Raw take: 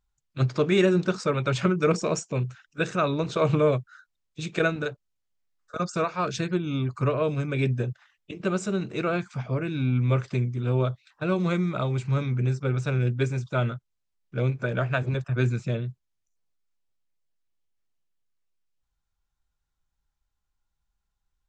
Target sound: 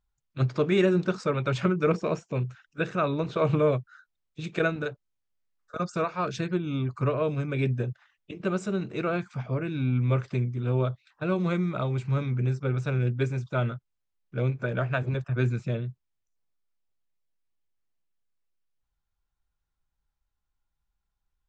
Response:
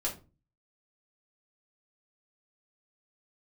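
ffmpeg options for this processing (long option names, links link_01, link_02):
-filter_complex "[0:a]asettb=1/sr,asplit=3[link_01][link_02][link_03];[link_01]atrim=end=1.694[link_04];[link_02]atrim=start=1.69:end=4.44,asetpts=PTS-STARTPTS,afade=type=in:duration=0.004:curve=qsin,afade=type=out:start_time=2.746:duration=0.004:curve=qsin,acrossover=split=4300[link_05][link_06];[link_06]acompressor=threshold=-51dB:ratio=4:attack=1:release=60[link_07];[link_05][link_07]amix=inputs=2:normalize=0[link_08];[link_03]atrim=start=4.436[link_09];[link_04][link_08]acrossfade=duration=0.004:curve1=hsin:curve2=qsin[link_10];[link_10][link_09]acrossfade=duration=0.004:curve1=qsin:curve2=hsin,highshelf=frequency=5400:gain=-9,volume=-1.5dB"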